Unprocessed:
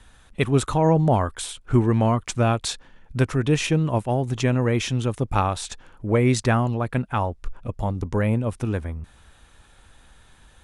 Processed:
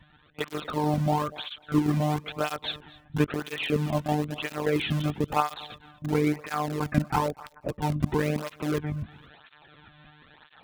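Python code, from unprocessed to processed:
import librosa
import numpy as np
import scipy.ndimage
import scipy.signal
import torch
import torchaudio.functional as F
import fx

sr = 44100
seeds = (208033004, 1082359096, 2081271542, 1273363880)

p1 = fx.lpc_monotone(x, sr, seeds[0], pitch_hz=150.0, order=16)
p2 = fx.steep_lowpass(p1, sr, hz=2500.0, slope=96, at=(6.06, 7.76), fade=0.02)
p3 = (np.mod(10.0 ** (19.0 / 20.0) * p2 + 1.0, 2.0) - 1.0) / 10.0 ** (19.0 / 20.0)
p4 = p2 + (p3 * librosa.db_to_amplitude(-11.5))
p5 = fx.rider(p4, sr, range_db=4, speed_s=0.5)
p6 = p5 + fx.echo_feedback(p5, sr, ms=242, feedback_pct=18, wet_db=-21, dry=0)
y = fx.flanger_cancel(p6, sr, hz=1.0, depth_ms=2.5)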